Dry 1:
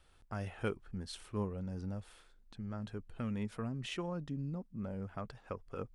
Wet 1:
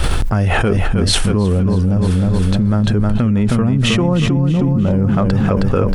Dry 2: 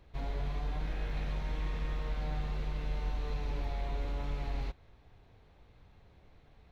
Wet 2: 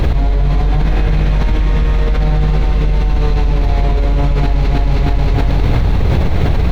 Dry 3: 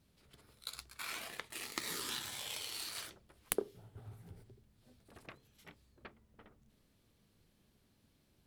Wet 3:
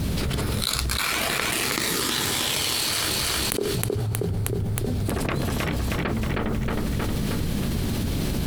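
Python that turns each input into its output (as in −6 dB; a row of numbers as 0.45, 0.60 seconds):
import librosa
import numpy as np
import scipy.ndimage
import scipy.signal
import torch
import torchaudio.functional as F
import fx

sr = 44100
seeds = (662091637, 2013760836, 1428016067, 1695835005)

y = fx.low_shelf(x, sr, hz=370.0, db=8.0)
y = fx.echo_feedback(y, sr, ms=315, feedback_pct=46, wet_db=-7)
y = fx.env_flatten(y, sr, amount_pct=100)
y = y * 10.0 ** (-1.5 / 20.0) / np.max(np.abs(y))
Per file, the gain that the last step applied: +13.0, +12.5, +3.0 decibels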